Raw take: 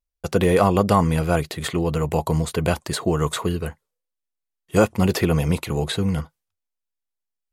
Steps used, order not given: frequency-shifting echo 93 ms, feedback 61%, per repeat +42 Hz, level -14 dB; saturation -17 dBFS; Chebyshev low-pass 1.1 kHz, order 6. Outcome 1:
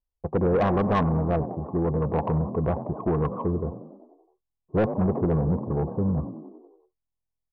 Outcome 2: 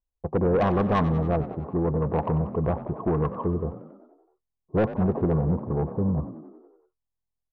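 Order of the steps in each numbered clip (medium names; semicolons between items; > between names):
frequency-shifting echo > Chebyshev low-pass > saturation; Chebyshev low-pass > saturation > frequency-shifting echo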